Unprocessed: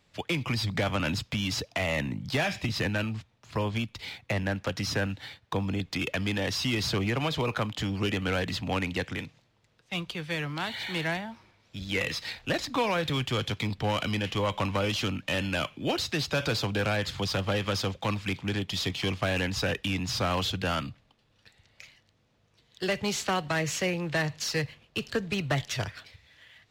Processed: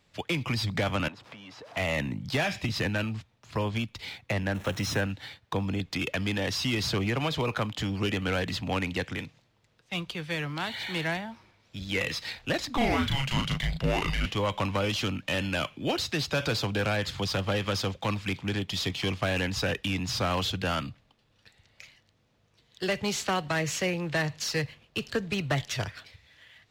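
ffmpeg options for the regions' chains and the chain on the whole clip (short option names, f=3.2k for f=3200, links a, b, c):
-filter_complex "[0:a]asettb=1/sr,asplit=3[a][b][c];[a]atrim=end=1.084[d];[b]atrim=start=1.08:end=1.77,asetpts=PTS-STARTPTS,afade=t=in:d=0.004:c=qsin,afade=t=out:st=0.686:d=0.004:c=qsin,aeval=exprs='val(0)+0.5*0.0126*sgn(val(0))':c=same,acompressor=threshold=-36dB:ratio=3:attack=3.2:release=140:knee=1:detection=peak,bandpass=f=880:t=q:w=0.83[e];[c]atrim=start=1.766[f];[d][e]acrossfade=d=0.004:c1=hsin:c2=qsin[g];[g][f]acrossfade=d=0.004:c1=qsin:c2=hsin,asettb=1/sr,asplit=3[h][i][j];[h]atrim=end=4.544[k];[i]atrim=start=4.54:end=5.01,asetpts=PTS-STARTPTS,afade=t=in:d=0.004:c=qsin,afade=t=out:st=0.466:d=0.004:c=qsin,aeval=exprs='val(0)+0.5*0.015*sgn(val(0))':c=same,bandreject=f=4.7k:w=5,agate=range=-33dB:threshold=-35dB:ratio=3:release=100:detection=peak[l];[j]atrim=start=5.006[m];[k][l]acrossfade=d=0.004:c1=hsin:c2=qsin[n];[n][m]acrossfade=d=0.004:c1=qsin:c2=hsin,asettb=1/sr,asplit=3[o][p][q];[o]atrim=end=12.774[r];[p]atrim=start=12.77:end=14.26,asetpts=PTS-STARTPTS,afade=t=in:d=0.004:c=qsin,afade=t=out:st=1.486:d=0.004:c=qsin,afreqshift=-260,asplit=2[s][t];[t]adelay=36,volume=-3dB[u];[s][u]amix=inputs=2:normalize=0,atrim=end_sample=65709[v];[q]atrim=start=14.256[w];[r][v]acrossfade=d=0.004:c1=hsin:c2=qsin[x];[x][w]acrossfade=d=0.004:c1=qsin:c2=hsin"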